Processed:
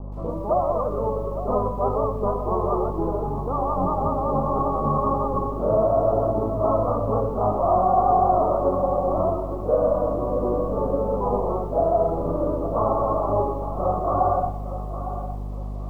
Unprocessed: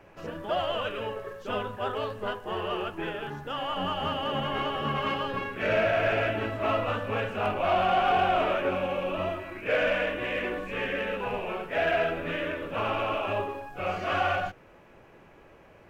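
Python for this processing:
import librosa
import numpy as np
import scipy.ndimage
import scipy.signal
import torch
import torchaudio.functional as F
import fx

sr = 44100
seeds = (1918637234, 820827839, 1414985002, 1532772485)

p1 = fx.add_hum(x, sr, base_hz=50, snr_db=13)
p2 = scipy.signal.sosfilt(scipy.signal.butter(16, 1200.0, 'lowpass', fs=sr, output='sos'), p1)
p3 = fx.rider(p2, sr, range_db=3, speed_s=0.5)
p4 = p2 + F.gain(torch.from_numpy(p3), 2.0).numpy()
p5 = fx.echo_feedback(p4, sr, ms=860, feedback_pct=28, wet_db=-12)
y = fx.echo_crushed(p5, sr, ms=122, feedback_pct=35, bits=8, wet_db=-15)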